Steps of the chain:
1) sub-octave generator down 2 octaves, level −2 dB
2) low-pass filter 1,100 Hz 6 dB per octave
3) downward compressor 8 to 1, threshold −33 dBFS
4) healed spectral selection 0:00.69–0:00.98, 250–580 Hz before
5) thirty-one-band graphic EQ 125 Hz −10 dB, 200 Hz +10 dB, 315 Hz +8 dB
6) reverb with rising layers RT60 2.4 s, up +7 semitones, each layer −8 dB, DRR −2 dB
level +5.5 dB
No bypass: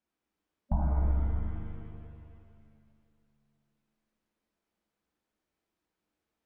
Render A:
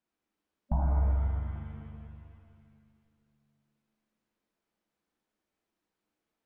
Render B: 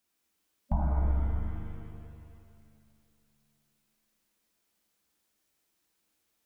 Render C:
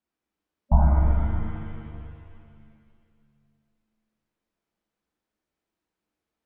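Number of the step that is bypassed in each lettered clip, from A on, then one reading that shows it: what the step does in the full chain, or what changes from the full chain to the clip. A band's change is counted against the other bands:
1, 250 Hz band −3.0 dB
2, 2 kHz band +1.5 dB
3, average gain reduction 3.5 dB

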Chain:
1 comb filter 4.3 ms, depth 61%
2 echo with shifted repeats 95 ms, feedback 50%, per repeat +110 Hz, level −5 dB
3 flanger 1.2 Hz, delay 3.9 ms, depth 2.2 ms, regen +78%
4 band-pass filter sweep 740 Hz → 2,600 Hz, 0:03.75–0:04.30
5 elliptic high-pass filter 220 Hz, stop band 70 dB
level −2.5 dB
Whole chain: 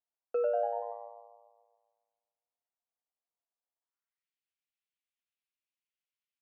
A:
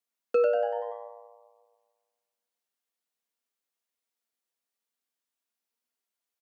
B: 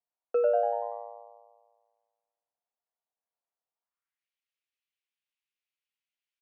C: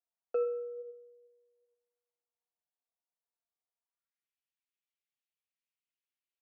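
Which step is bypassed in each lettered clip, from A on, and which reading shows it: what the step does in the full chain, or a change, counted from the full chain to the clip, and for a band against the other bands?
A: 4, change in integrated loudness +5.5 LU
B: 3, change in integrated loudness +4.5 LU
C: 2, change in integrated loudness −3.0 LU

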